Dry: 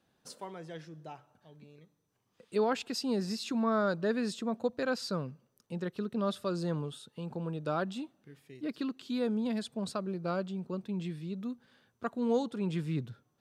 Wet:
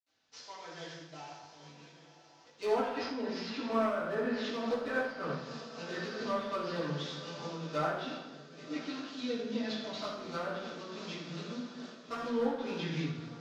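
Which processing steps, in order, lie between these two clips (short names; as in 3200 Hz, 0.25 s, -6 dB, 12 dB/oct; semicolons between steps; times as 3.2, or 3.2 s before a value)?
CVSD 32 kbps; tilt +3 dB/oct; diffused feedback echo 1.096 s, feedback 62%, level -15 dB; 8.01–10.18 rotary speaker horn 1 Hz; treble ducked by the level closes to 1200 Hz, closed at -29 dBFS; AGC gain up to 7.5 dB; overloaded stage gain 20.5 dB; reverb RT60 1.3 s, pre-delay 65 ms; noise-modulated level, depth 60%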